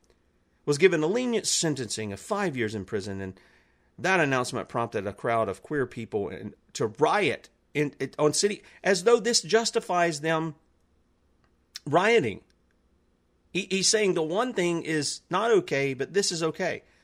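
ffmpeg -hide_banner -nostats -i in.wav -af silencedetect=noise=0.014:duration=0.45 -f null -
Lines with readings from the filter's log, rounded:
silence_start: 0.00
silence_end: 0.67 | silence_duration: 0.67
silence_start: 3.37
silence_end: 3.99 | silence_duration: 0.62
silence_start: 10.51
silence_end: 11.75 | silence_duration: 1.24
silence_start: 12.37
silence_end: 13.55 | silence_duration: 1.17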